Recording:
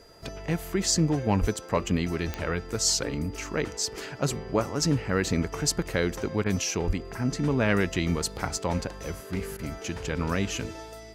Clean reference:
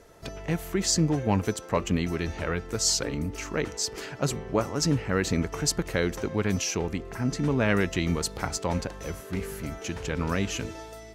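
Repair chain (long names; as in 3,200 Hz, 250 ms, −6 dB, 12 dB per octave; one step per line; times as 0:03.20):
click removal
notch filter 4,800 Hz, Q 30
0:01.40–0:01.52: high-pass filter 140 Hz 24 dB per octave
0:06.86–0:06.98: high-pass filter 140 Hz 24 dB per octave
repair the gap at 0:06.44/0:09.57, 18 ms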